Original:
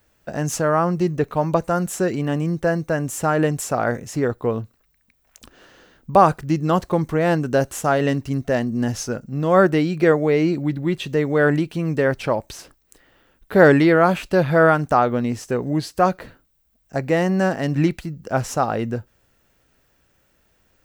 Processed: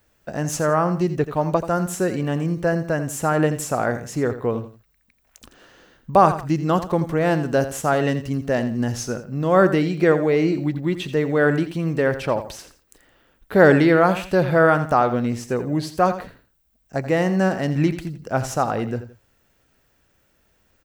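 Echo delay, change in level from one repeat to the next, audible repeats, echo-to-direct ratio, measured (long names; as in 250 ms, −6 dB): 84 ms, −10.0 dB, 2, −11.5 dB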